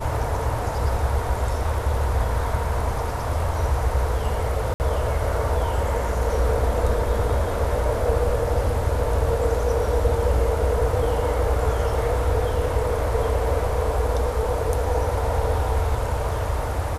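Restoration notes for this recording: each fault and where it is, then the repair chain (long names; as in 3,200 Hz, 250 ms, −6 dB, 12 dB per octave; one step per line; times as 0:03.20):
0:04.74–0:04.80: drop-out 59 ms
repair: repair the gap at 0:04.74, 59 ms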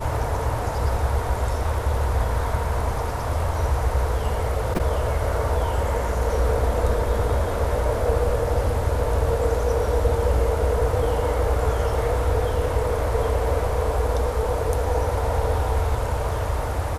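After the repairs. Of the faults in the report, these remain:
none of them is left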